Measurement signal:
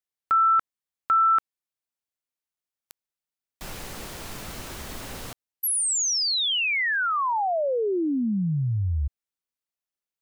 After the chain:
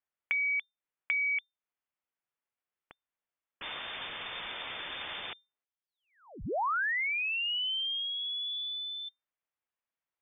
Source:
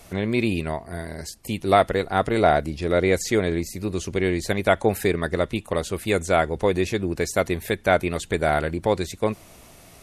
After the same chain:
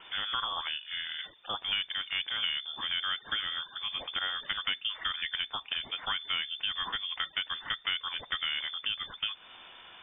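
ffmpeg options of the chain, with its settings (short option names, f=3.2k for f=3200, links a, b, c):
-filter_complex "[0:a]acrossover=split=150|470[a][b][c];[a]acompressor=threshold=-37dB:ratio=6[d];[b]acompressor=threshold=-38dB:ratio=3[e];[c]acompressor=threshold=-34dB:ratio=4[f];[d][e][f]amix=inputs=3:normalize=0,tiltshelf=f=970:g=-5,lowpass=f=3.1k:t=q:w=0.5098,lowpass=f=3.1k:t=q:w=0.6013,lowpass=f=3.1k:t=q:w=0.9,lowpass=f=3.1k:t=q:w=2.563,afreqshift=-3600"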